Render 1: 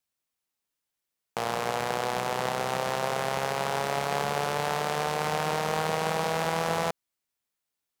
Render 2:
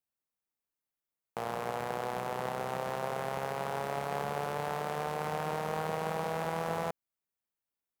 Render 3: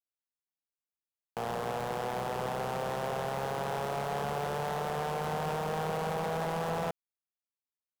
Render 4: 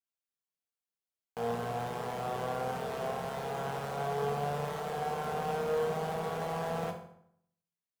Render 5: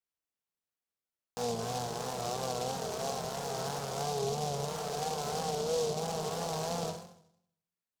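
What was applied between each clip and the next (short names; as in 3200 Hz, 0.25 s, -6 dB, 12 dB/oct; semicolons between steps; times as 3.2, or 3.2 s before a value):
bell 5000 Hz -8.5 dB 2.4 oct; gain -5 dB
sample leveller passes 3; gain -6 dB
reverb RT60 0.70 s, pre-delay 3 ms, DRR 0.5 dB; gain -5 dB
treble ducked by the level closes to 920 Hz, closed at -29 dBFS; vibrato 3 Hz 71 cents; noise-modulated delay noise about 4900 Hz, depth 0.089 ms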